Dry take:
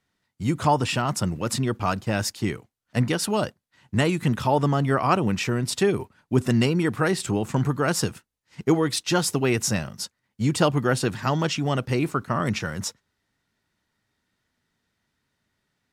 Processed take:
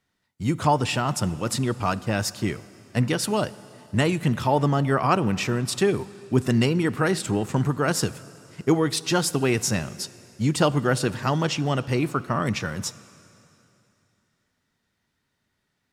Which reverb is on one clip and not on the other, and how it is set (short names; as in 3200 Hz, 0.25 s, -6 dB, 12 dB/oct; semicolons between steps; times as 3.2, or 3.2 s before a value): plate-style reverb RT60 2.9 s, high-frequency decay 0.95×, DRR 17 dB